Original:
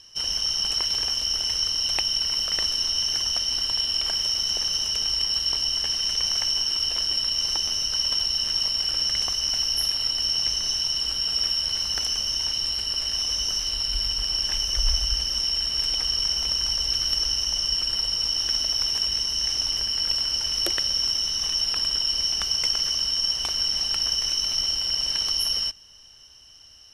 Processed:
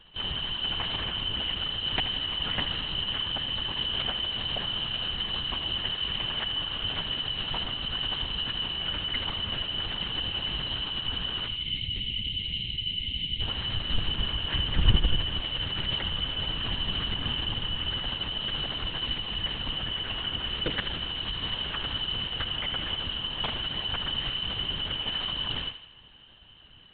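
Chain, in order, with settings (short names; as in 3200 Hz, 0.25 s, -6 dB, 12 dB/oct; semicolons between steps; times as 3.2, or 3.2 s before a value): octaver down 2 oct, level +2 dB; spectral gain 11.47–13.41, 380–2000 Hz -25 dB; LPC vocoder at 8 kHz whisper; thinning echo 79 ms, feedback 54%, high-pass 420 Hz, level -10.5 dB; gain +2 dB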